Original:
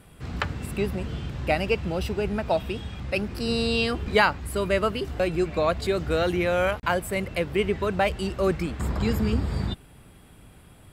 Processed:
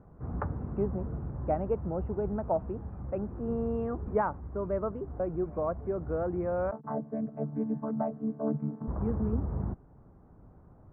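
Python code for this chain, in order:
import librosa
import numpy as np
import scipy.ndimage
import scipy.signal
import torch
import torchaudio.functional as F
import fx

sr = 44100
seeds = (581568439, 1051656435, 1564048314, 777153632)

y = fx.chord_vocoder(x, sr, chord='bare fifth', root=50, at=(6.71, 8.88))
y = scipy.signal.sosfilt(scipy.signal.cheby2(4, 60, 3800.0, 'lowpass', fs=sr, output='sos'), y)
y = fx.rider(y, sr, range_db=4, speed_s=2.0)
y = y * librosa.db_to_amplitude(-6.0)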